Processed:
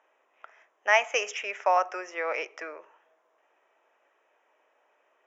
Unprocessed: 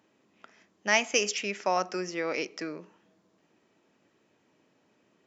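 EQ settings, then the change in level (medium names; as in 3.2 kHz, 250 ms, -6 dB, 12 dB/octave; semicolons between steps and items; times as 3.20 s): boxcar filter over 10 samples; high-pass 570 Hz 24 dB/octave; +6.0 dB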